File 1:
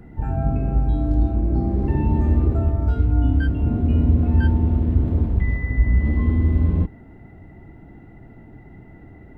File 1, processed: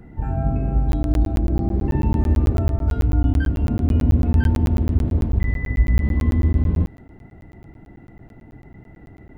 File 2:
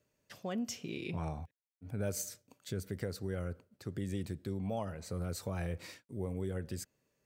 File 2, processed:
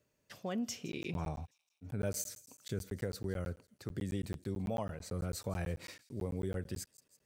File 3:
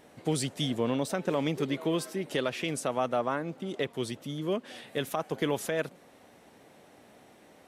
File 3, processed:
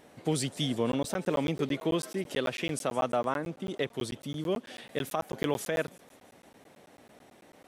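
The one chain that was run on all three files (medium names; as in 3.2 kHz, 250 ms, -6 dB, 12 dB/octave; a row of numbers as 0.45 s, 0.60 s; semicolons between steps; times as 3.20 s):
feedback echo behind a high-pass 165 ms, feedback 60%, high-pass 4.5 kHz, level -16 dB; crackling interface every 0.11 s, samples 512, zero, from 0.92 s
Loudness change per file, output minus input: -0.5 LU, -0.5 LU, -0.5 LU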